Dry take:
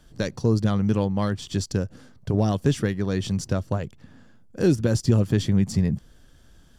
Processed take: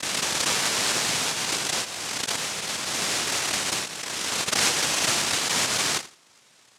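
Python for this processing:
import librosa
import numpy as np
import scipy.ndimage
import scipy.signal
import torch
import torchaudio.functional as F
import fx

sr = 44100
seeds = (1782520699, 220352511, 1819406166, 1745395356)

p1 = fx.vibrato(x, sr, rate_hz=0.33, depth_cents=88.0)
p2 = fx.over_compress(p1, sr, threshold_db=-26.0, ratio=-1.0)
p3 = p1 + (p2 * 10.0 ** (-2.0 / 20.0))
p4 = fx.cheby2_bandstop(p3, sr, low_hz=290.0, high_hz=740.0, order=4, stop_db=60, at=(2.35, 2.92), fade=0.02)
p5 = fx.noise_vocoder(p4, sr, seeds[0], bands=1)
p6 = p5 + fx.echo_feedback(p5, sr, ms=83, feedback_pct=24, wet_db=-16.5, dry=0)
p7 = fx.pre_swell(p6, sr, db_per_s=20.0)
y = p7 * 10.0 ** (-6.5 / 20.0)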